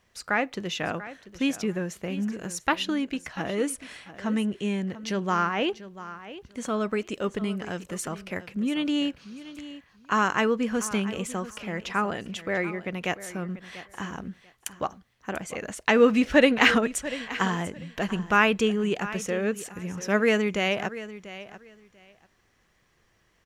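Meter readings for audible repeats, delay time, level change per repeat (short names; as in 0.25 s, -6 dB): 2, 0.691 s, -15.0 dB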